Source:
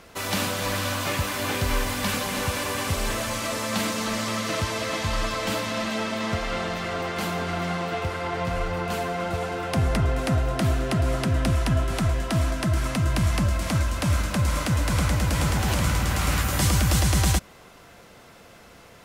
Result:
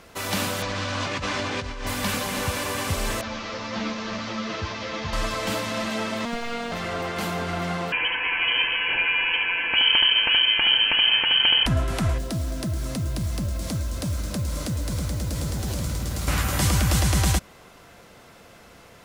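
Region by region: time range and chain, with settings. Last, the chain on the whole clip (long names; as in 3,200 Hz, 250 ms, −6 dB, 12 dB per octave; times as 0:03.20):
0:00.62–0:01.87: low-pass filter 6,300 Hz 24 dB per octave + compressor whose output falls as the input rises −29 dBFS
0:03.21–0:05.13: variable-slope delta modulation 32 kbit/s + string-ensemble chorus
0:06.25–0:06.72: running median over 3 samples + phases set to zero 235 Hz
0:07.92–0:11.66: hollow resonant body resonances 790/1,500/2,200 Hz, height 10 dB, ringing for 25 ms + single-tap delay 74 ms −4 dB + voice inversion scrambler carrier 3,100 Hz
0:12.18–0:16.28: flat-topped bell 1,500 Hz −8.5 dB 2.3 octaves + downward compressor 2.5 to 1, threshold −25 dBFS + noise that follows the level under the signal 24 dB
whole clip: no processing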